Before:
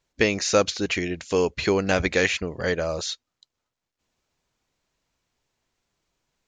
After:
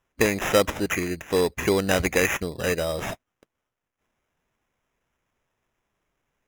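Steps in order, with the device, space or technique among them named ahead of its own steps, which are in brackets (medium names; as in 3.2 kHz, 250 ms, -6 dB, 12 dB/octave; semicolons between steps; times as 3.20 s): crushed at another speed (playback speed 0.5×; sample-and-hold 20×; playback speed 2×)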